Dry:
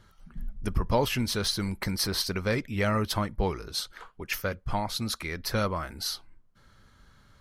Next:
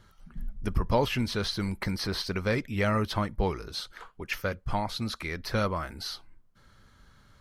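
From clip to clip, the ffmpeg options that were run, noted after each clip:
-filter_complex "[0:a]acrossover=split=4500[a][b];[b]acompressor=threshold=-45dB:ratio=4:attack=1:release=60[c];[a][c]amix=inputs=2:normalize=0"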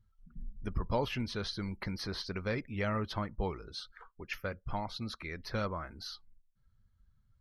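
-af "afftdn=nr=21:nf=-47,volume=-7dB"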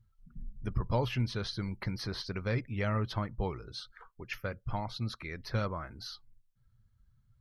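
-af "equalizer=f=120:w=4:g=10"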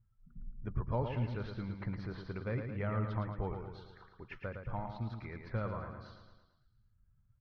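-filter_complex "[0:a]lowpass=1.8k,asplit=2[a][b];[b]aecho=0:1:111|222|333|444|555|666|777:0.473|0.26|0.143|0.0787|0.0433|0.0238|0.0131[c];[a][c]amix=inputs=2:normalize=0,volume=-4.5dB"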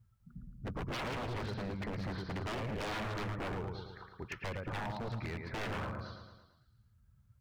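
-af "highpass=f=47:w=0.5412,highpass=f=47:w=1.3066,aeval=exprs='0.0106*(abs(mod(val(0)/0.0106+3,4)-2)-1)':c=same,volume=6.5dB"

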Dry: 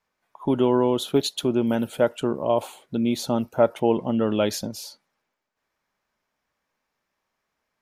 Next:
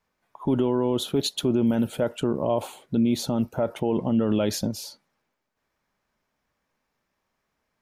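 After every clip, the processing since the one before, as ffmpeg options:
-af "lowshelf=f=340:g=7,alimiter=limit=-14dB:level=0:latency=1:release=31"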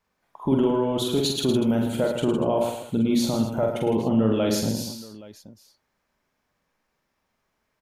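-af "aecho=1:1:45|79|108|159|240|825:0.631|0.126|0.398|0.355|0.2|0.106"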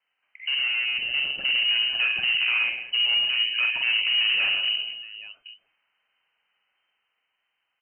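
-af "volume=21dB,asoftclip=hard,volume=-21dB,dynaudnorm=f=490:g=5:m=3.5dB,lowpass=f=2.6k:t=q:w=0.5098,lowpass=f=2.6k:t=q:w=0.6013,lowpass=f=2.6k:t=q:w=0.9,lowpass=f=2.6k:t=q:w=2.563,afreqshift=-3100,volume=-2dB"

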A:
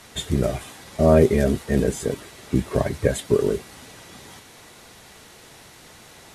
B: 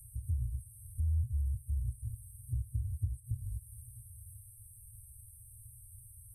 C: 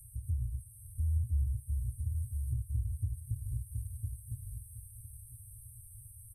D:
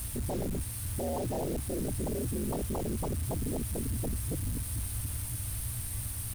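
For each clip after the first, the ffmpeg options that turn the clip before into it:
-filter_complex "[0:a]acrossover=split=2500[a][b];[b]acompressor=threshold=-51dB:ratio=4:attack=1:release=60[c];[a][c]amix=inputs=2:normalize=0,afftfilt=real='re*(1-between(b*sr/4096,120,8200))':imag='im*(1-between(b*sr/4096,120,8200))':win_size=4096:overlap=0.75,acompressor=threshold=-42dB:ratio=2,volume=4dB"
-af "aecho=1:1:1005|2010|3015:0.631|0.139|0.0305"
-af "aeval=exprs='0.0708*sin(PI/2*7.94*val(0)/0.0708)':c=same,acrusher=bits=5:mix=0:aa=0.000001,aeval=exprs='val(0)+0.01*(sin(2*PI*60*n/s)+sin(2*PI*2*60*n/s)/2+sin(2*PI*3*60*n/s)/3+sin(2*PI*4*60*n/s)/4+sin(2*PI*5*60*n/s)/5)':c=same,volume=-6.5dB"

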